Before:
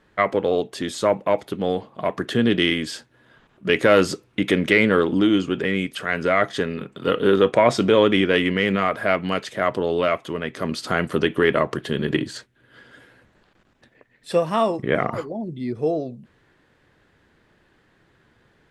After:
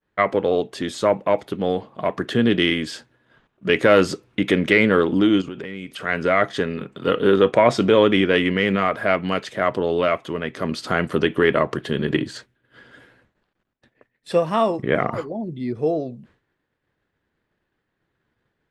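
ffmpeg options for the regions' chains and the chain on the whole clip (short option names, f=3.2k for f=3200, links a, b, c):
-filter_complex "[0:a]asettb=1/sr,asplit=3[a][b][c];[a]atrim=end=5.414[d];[b]atrim=start=5.41:end=6.04,asetpts=PTS-STARTPTS,afade=t=in:d=0.004:c=qsin,afade=t=out:st=0.626:d=0.004:c=qsin,bandreject=f=1.7k:w=19,acompressor=threshold=-29dB:ratio=6:attack=3.2:release=140:knee=1:detection=peak[e];[c]atrim=start=6.036[f];[d][e]acrossfade=d=0.004:c1=hsin:c2=qsin[g];[g][f]acrossfade=d=0.004:c1=qsin:c2=hsin,agate=range=-33dB:threshold=-49dB:ratio=3:detection=peak,highshelf=f=6.5k:g=-6,volume=1dB"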